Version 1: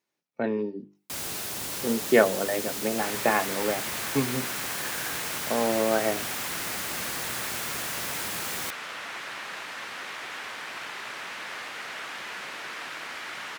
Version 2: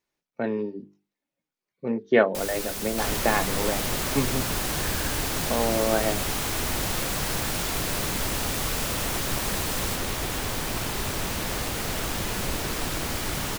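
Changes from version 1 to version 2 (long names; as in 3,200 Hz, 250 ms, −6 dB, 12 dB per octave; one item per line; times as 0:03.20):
first sound: entry +1.25 s
second sound: remove resonant band-pass 1,800 Hz, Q 1.2
master: remove high-pass filter 120 Hz 12 dB per octave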